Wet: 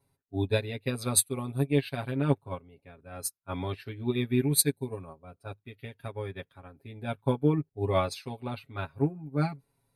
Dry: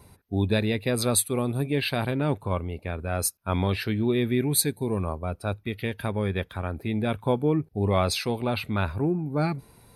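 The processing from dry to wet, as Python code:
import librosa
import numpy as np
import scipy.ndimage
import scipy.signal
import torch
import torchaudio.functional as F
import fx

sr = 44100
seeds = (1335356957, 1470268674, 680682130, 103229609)

y = x + 0.92 * np.pad(x, (int(7.3 * sr / 1000.0), 0))[:len(x)]
y = fx.upward_expand(y, sr, threshold_db=-31.0, expansion=2.5)
y = y * librosa.db_to_amplitude(-1.5)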